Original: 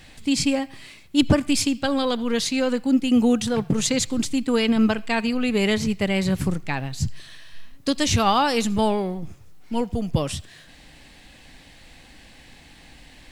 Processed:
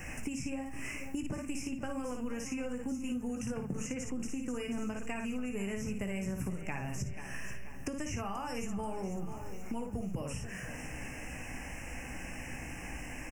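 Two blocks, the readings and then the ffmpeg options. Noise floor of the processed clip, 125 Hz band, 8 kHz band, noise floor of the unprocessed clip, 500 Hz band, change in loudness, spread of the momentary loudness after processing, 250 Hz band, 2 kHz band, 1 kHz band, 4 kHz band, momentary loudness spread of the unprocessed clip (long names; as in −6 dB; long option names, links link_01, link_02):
−44 dBFS, −12.5 dB, −14.5 dB, −49 dBFS, −16.0 dB, −17.0 dB, 6 LU, −15.5 dB, −12.0 dB, −17.0 dB, −22.5 dB, 10 LU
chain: -filter_complex "[0:a]asplit=2[link_01][link_02];[link_02]aecho=0:1:16|56:0.422|0.531[link_03];[link_01][link_03]amix=inputs=2:normalize=0,acompressor=threshold=-33dB:ratio=6,asuperstop=centerf=3900:order=12:qfactor=1.6,asplit=2[link_04][link_05];[link_05]aecho=0:1:484|968|1452|1936|2420:0.15|0.0778|0.0405|0.021|0.0109[link_06];[link_04][link_06]amix=inputs=2:normalize=0,acrossover=split=150|4800[link_07][link_08][link_09];[link_07]acompressor=threshold=-44dB:ratio=4[link_10];[link_08]acompressor=threshold=-42dB:ratio=4[link_11];[link_09]acompressor=threshold=-54dB:ratio=4[link_12];[link_10][link_11][link_12]amix=inputs=3:normalize=0,aeval=exprs='val(0)+0.00126*(sin(2*PI*60*n/s)+sin(2*PI*2*60*n/s)/2+sin(2*PI*3*60*n/s)/3+sin(2*PI*4*60*n/s)/4+sin(2*PI*5*60*n/s)/5)':channel_layout=same,volume=4.5dB"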